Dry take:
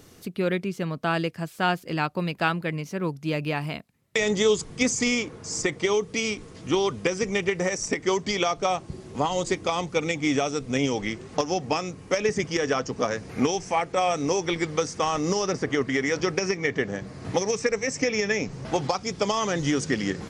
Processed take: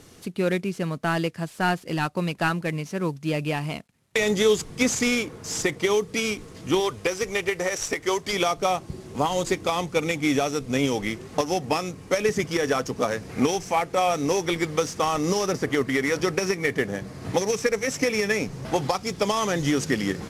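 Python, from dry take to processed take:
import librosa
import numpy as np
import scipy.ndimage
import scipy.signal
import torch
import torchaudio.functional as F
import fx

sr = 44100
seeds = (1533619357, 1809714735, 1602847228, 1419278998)

y = fx.cvsd(x, sr, bps=64000)
y = fx.peak_eq(y, sr, hz=200.0, db=-10.0, octaves=1.1, at=(6.8, 8.33))
y = y * librosa.db_to_amplitude(1.5)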